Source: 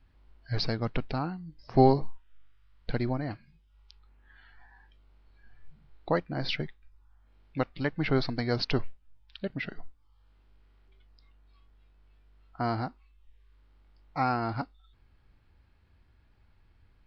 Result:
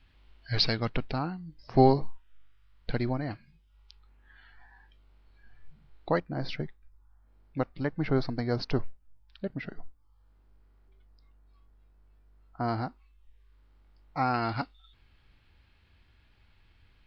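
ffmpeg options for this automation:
ffmpeg -i in.wav -af "asetnsamples=nb_out_samples=441:pad=0,asendcmd='0.89 equalizer g 1.5;6.2 equalizer g -9;12.68 equalizer g -1.5;14.34 equalizer g 10',equalizer=frequency=3100:width_type=o:width=1.6:gain=10.5" out.wav

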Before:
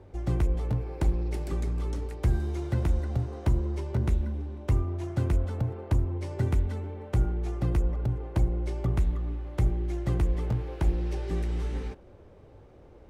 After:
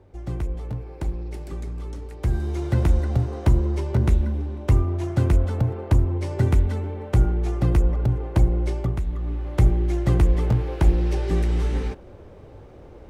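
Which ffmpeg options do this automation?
ffmpeg -i in.wav -af "volume=17dB,afade=type=in:start_time=2.05:duration=0.75:silence=0.354813,afade=type=out:start_time=8.69:duration=0.33:silence=0.354813,afade=type=in:start_time=9.02:duration=0.49:silence=0.316228" out.wav

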